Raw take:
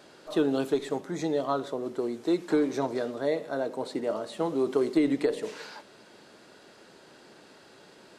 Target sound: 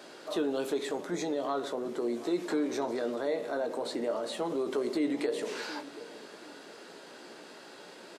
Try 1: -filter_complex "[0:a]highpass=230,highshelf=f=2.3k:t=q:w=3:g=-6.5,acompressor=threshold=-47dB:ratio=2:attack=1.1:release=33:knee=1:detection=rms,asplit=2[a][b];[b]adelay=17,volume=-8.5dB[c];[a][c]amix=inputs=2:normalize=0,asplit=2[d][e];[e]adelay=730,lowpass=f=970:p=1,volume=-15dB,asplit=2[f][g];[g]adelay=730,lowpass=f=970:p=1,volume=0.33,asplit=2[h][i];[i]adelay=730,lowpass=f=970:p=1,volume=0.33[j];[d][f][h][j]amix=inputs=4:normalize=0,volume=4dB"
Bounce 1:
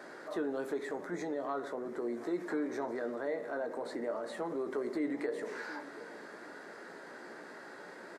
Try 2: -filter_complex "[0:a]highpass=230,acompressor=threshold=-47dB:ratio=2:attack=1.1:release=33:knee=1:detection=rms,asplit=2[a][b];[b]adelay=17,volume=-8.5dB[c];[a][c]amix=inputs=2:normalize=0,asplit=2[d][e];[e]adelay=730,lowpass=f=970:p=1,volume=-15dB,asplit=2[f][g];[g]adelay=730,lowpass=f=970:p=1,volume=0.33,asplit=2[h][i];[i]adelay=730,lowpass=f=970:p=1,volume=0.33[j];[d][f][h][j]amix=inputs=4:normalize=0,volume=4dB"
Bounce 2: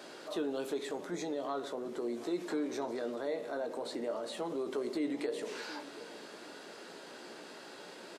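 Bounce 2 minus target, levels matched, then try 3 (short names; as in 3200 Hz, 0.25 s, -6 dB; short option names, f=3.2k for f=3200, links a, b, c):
compressor: peak gain reduction +4.5 dB
-filter_complex "[0:a]highpass=230,acompressor=threshold=-37.5dB:ratio=2:attack=1.1:release=33:knee=1:detection=rms,asplit=2[a][b];[b]adelay=17,volume=-8.5dB[c];[a][c]amix=inputs=2:normalize=0,asplit=2[d][e];[e]adelay=730,lowpass=f=970:p=1,volume=-15dB,asplit=2[f][g];[g]adelay=730,lowpass=f=970:p=1,volume=0.33,asplit=2[h][i];[i]adelay=730,lowpass=f=970:p=1,volume=0.33[j];[d][f][h][j]amix=inputs=4:normalize=0,volume=4dB"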